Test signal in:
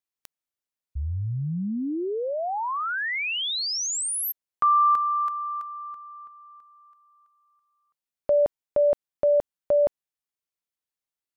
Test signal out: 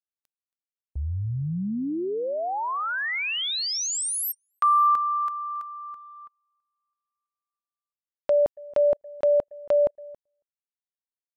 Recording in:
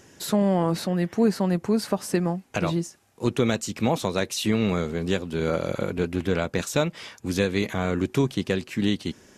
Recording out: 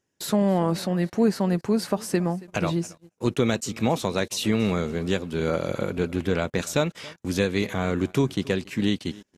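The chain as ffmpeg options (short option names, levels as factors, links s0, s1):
-af "aecho=1:1:276|552:0.0841|0.0261,agate=range=0.0501:threshold=0.00447:ratio=16:release=37:detection=peak"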